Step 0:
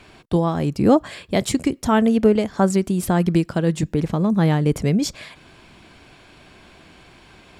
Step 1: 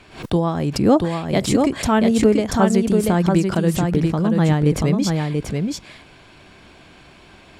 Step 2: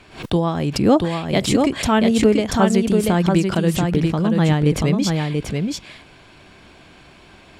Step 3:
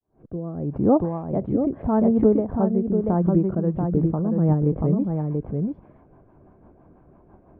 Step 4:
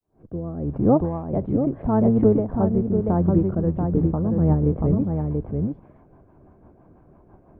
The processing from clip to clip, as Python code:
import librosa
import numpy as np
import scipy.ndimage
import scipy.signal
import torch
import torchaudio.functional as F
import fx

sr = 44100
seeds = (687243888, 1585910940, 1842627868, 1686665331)

y1 = fx.high_shelf(x, sr, hz=11000.0, db=-4.5)
y1 = y1 + 10.0 ** (-4.0 / 20.0) * np.pad(y1, (int(685 * sr / 1000.0), 0))[:len(y1)]
y1 = fx.pre_swell(y1, sr, db_per_s=130.0)
y2 = fx.dynamic_eq(y1, sr, hz=3000.0, q=1.3, threshold_db=-44.0, ratio=4.0, max_db=5)
y3 = fx.fade_in_head(y2, sr, length_s=0.97)
y3 = scipy.signal.sosfilt(scipy.signal.butter(4, 1000.0, 'lowpass', fs=sr, output='sos'), y3)
y3 = fx.rotary_switch(y3, sr, hz=0.8, then_hz=6.0, switch_at_s=2.82)
y3 = F.gain(torch.from_numpy(y3), -2.0).numpy()
y4 = fx.octave_divider(y3, sr, octaves=1, level_db=-6.0)